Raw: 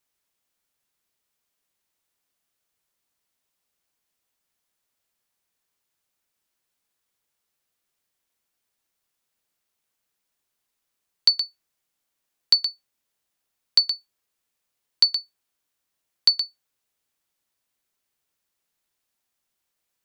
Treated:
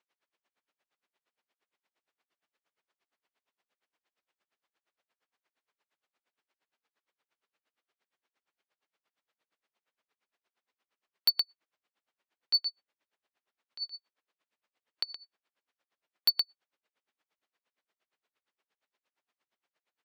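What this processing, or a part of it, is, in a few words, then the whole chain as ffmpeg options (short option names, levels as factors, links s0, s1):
helicopter radio: -af "highpass=300,lowpass=2900,aeval=exprs='val(0)*pow(10,-31*(0.5-0.5*cos(2*PI*8.6*n/s))/20)':c=same,asoftclip=type=hard:threshold=0.0473,volume=2.37"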